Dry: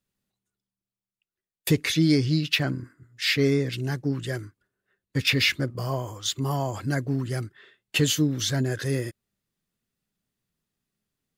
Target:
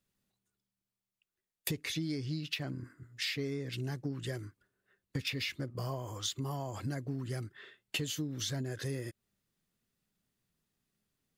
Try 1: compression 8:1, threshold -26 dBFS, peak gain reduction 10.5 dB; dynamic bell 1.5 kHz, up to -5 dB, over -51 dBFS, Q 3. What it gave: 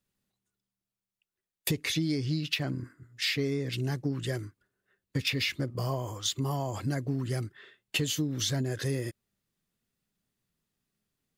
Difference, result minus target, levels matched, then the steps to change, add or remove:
compression: peak gain reduction -6.5 dB
change: compression 8:1, threshold -33.5 dBFS, peak gain reduction 17 dB

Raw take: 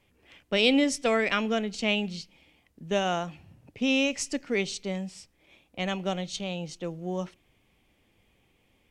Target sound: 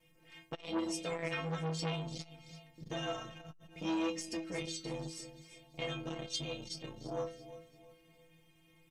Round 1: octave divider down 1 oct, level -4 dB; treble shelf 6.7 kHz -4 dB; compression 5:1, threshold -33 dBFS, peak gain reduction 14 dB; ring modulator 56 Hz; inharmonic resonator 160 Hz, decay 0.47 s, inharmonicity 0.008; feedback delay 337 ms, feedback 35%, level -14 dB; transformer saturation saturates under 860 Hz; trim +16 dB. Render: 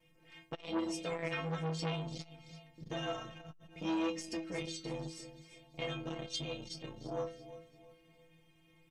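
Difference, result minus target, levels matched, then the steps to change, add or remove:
8 kHz band -3.0 dB
change: treble shelf 6.7 kHz +3.5 dB

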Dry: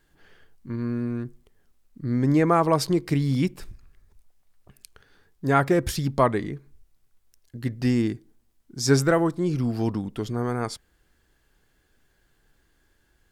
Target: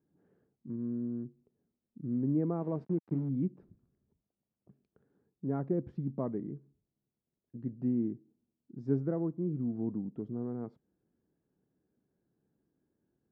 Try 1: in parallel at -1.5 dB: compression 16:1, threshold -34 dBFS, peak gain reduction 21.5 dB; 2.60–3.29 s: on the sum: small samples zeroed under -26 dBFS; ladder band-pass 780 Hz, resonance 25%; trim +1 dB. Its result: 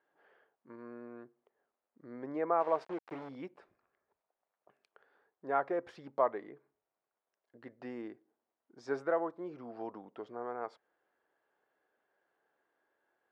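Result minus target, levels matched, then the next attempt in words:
1 kHz band +15.5 dB
in parallel at -1.5 dB: compression 16:1, threshold -34 dBFS, peak gain reduction 21.5 dB; 2.60–3.29 s: on the sum: small samples zeroed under -26 dBFS; ladder band-pass 240 Hz, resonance 25%; trim +1 dB

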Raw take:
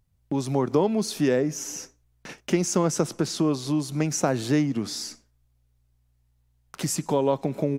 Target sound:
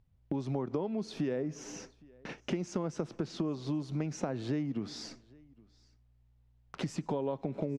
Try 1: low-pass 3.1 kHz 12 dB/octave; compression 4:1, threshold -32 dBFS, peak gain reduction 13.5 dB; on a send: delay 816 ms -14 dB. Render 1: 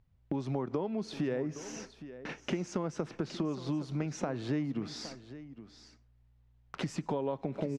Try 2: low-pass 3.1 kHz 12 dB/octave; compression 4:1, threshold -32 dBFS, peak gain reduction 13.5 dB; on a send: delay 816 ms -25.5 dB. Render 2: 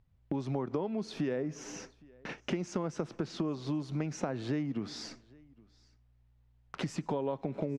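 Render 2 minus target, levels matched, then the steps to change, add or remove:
2 kHz band +3.0 dB
add after low-pass: peaking EQ 1.6 kHz -3.5 dB 2 oct

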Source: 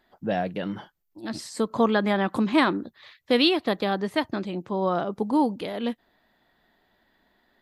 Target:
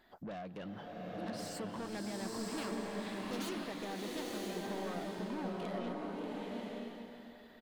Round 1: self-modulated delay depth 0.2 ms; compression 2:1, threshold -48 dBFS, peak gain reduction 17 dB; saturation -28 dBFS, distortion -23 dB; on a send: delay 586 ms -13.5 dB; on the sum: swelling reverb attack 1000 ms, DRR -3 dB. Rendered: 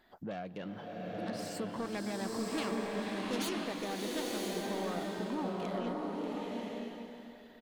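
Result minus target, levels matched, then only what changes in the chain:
saturation: distortion -13 dB
change: saturation -39 dBFS, distortion -10 dB

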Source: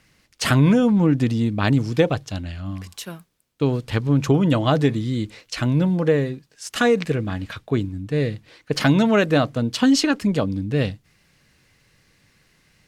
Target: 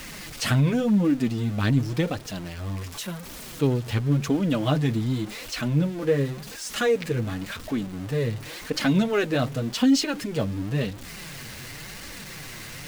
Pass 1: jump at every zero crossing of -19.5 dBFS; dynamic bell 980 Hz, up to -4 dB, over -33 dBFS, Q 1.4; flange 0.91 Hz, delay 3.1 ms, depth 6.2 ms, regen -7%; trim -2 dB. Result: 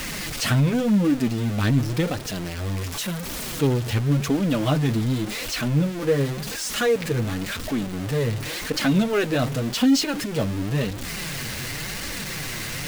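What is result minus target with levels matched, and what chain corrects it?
jump at every zero crossing: distortion +7 dB
jump at every zero crossing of -28 dBFS; dynamic bell 980 Hz, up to -4 dB, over -33 dBFS, Q 1.4; flange 0.91 Hz, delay 3.1 ms, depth 6.2 ms, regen -7%; trim -2 dB

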